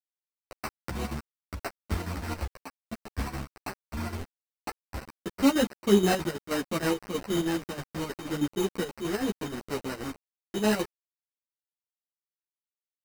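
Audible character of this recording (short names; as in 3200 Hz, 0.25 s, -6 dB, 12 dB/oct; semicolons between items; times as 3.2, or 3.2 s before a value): a quantiser's noise floor 6-bit, dither none; chopped level 6.3 Hz, depth 60%, duty 65%; aliases and images of a low sample rate 3400 Hz, jitter 0%; a shimmering, thickened sound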